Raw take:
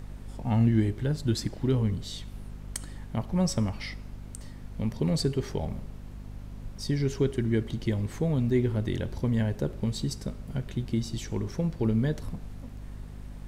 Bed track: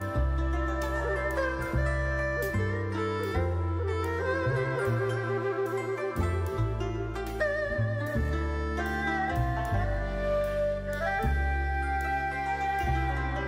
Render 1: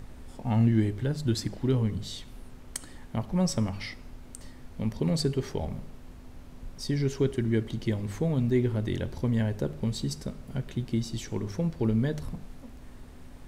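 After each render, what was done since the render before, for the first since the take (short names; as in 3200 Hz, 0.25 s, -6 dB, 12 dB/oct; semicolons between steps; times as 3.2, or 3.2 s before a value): de-hum 50 Hz, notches 4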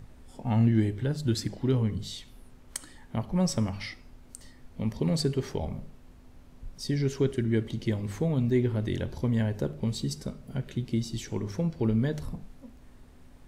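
noise print and reduce 6 dB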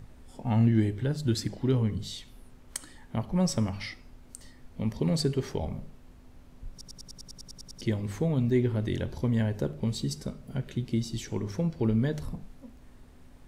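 6.71 stutter in place 0.10 s, 11 plays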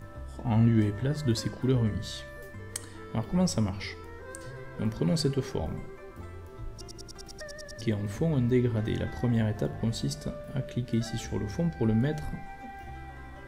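add bed track -15 dB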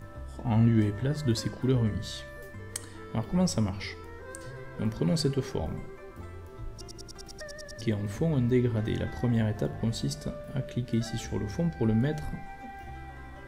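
nothing audible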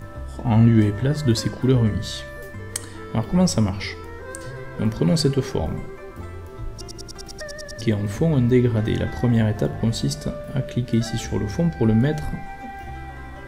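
gain +8 dB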